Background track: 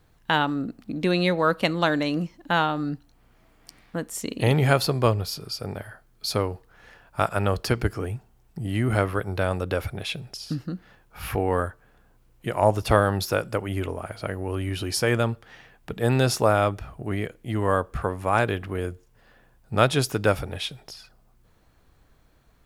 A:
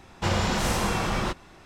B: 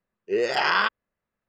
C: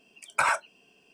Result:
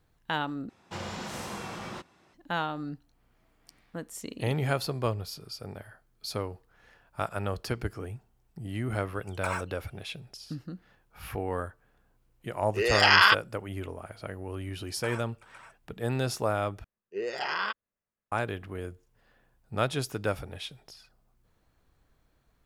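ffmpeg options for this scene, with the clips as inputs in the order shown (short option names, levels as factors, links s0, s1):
-filter_complex "[3:a]asplit=2[s0][s1];[2:a]asplit=2[s2][s3];[0:a]volume=0.376[s4];[1:a]highpass=110[s5];[s0]acrusher=bits=7:mode=log:mix=0:aa=0.000001[s6];[s2]tiltshelf=f=850:g=-7.5[s7];[s1]aecho=1:1:376|508:0.126|0.266[s8];[s4]asplit=3[s9][s10][s11];[s9]atrim=end=0.694[s12];[s5]atrim=end=1.65,asetpts=PTS-STARTPTS,volume=0.266[s13];[s10]atrim=start=2.336:end=16.844[s14];[s3]atrim=end=1.48,asetpts=PTS-STARTPTS,volume=0.335[s15];[s11]atrim=start=18.316[s16];[s6]atrim=end=1.13,asetpts=PTS-STARTPTS,volume=0.335,afade=t=in:d=0.004:c=hsin,afade=t=out:st=1.126:d=0.004:c=hsin,adelay=9050[s17];[s7]atrim=end=1.48,asetpts=PTS-STARTPTS,volume=0.944,afade=t=in:d=0.004:c=hsin,afade=t=out:st=1.476:d=0.004:c=hsin,adelay=12460[s18];[s8]atrim=end=1.13,asetpts=PTS-STARTPTS,volume=0.141,afade=t=in:d=0.004:c=hsin,afade=t=out:st=1.126:d=0.004:c=hsin,adelay=14650[s19];[s12][s13]acrossfade=d=0.004:c1=hsin:c2=hsin[s20];[s20][s14]acrossfade=d=0.004:c1=hsin:c2=hsin[s21];[s21][s15]acrossfade=d=0.004:c1=hsin:c2=hsin[s22];[s22][s16]acrossfade=d=0.004:c1=hsin:c2=hsin[s23];[s23][s17][s18][s19]amix=inputs=4:normalize=0"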